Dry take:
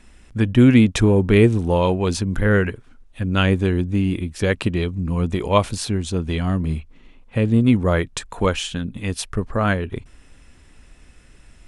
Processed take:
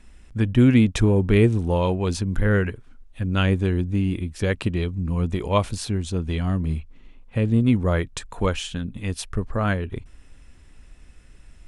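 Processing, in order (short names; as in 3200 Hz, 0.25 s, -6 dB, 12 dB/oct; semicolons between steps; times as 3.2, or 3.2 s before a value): low shelf 98 Hz +6.5 dB; gain -4.5 dB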